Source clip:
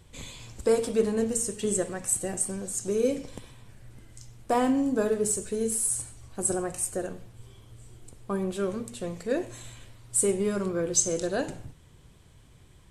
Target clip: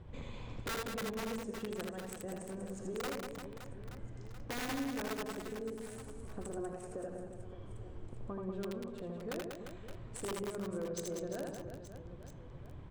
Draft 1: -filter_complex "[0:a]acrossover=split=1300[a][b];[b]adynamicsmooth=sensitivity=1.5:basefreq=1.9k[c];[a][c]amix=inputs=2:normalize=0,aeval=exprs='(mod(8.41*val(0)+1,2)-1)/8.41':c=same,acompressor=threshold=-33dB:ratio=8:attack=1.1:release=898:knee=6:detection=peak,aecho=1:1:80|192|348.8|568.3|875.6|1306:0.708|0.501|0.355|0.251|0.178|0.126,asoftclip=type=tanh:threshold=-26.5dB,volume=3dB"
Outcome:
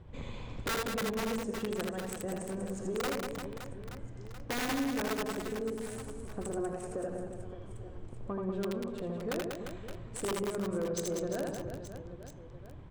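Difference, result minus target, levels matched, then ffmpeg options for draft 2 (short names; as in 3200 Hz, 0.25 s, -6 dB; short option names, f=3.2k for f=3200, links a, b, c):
compressor: peak gain reduction -6 dB
-filter_complex "[0:a]acrossover=split=1300[a][b];[b]adynamicsmooth=sensitivity=1.5:basefreq=1.9k[c];[a][c]amix=inputs=2:normalize=0,aeval=exprs='(mod(8.41*val(0)+1,2)-1)/8.41':c=same,acompressor=threshold=-40dB:ratio=8:attack=1.1:release=898:knee=6:detection=peak,aecho=1:1:80|192|348.8|568.3|875.6|1306:0.708|0.501|0.355|0.251|0.178|0.126,asoftclip=type=tanh:threshold=-26.5dB,volume=3dB"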